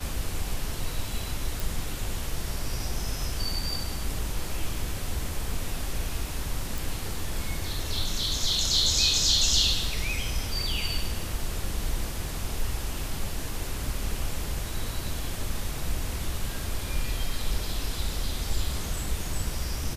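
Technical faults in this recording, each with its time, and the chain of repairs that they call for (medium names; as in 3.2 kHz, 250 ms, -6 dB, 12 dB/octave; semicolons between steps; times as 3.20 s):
1.60 s: pop
6.78 s: pop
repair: de-click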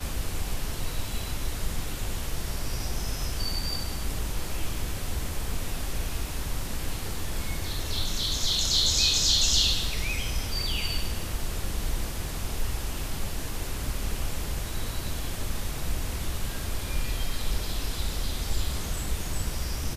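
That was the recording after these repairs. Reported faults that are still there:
nothing left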